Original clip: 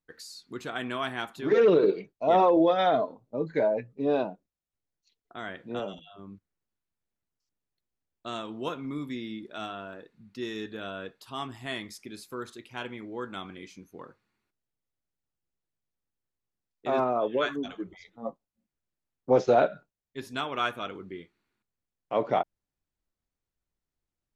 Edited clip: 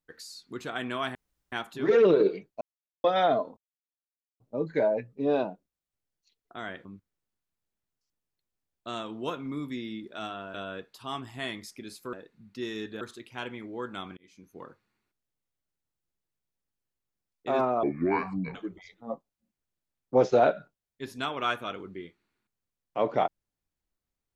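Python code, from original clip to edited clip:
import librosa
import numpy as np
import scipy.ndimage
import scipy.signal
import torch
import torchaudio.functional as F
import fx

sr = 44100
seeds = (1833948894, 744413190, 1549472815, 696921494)

y = fx.edit(x, sr, fx.insert_room_tone(at_s=1.15, length_s=0.37),
    fx.silence(start_s=2.24, length_s=0.43),
    fx.insert_silence(at_s=3.2, length_s=0.83),
    fx.cut(start_s=5.65, length_s=0.59),
    fx.move(start_s=9.93, length_s=0.88, to_s=12.4),
    fx.fade_in_span(start_s=13.56, length_s=0.42),
    fx.speed_span(start_s=17.22, length_s=0.48, speed=0.67), tone=tone)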